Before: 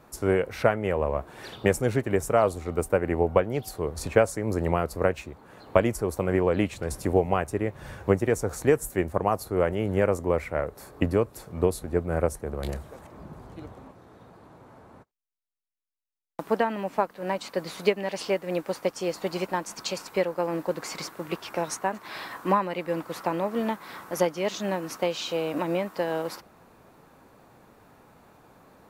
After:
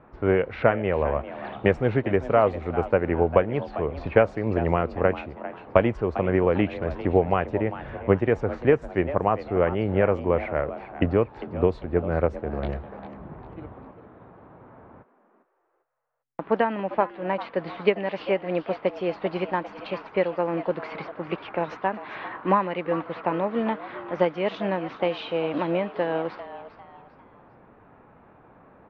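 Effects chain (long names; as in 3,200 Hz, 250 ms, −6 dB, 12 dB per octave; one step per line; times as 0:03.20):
low-pass filter 3,200 Hz 24 dB per octave
low-pass that shuts in the quiet parts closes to 2,000 Hz, open at −19.5 dBFS
on a send: echo with shifted repeats 399 ms, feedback 33%, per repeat +130 Hz, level −14 dB
on the sum: level +2 dB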